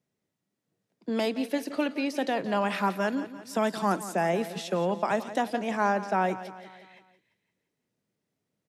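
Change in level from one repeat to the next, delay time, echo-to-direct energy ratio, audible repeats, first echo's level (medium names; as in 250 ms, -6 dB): -6.0 dB, 172 ms, -12.5 dB, 4, -14.0 dB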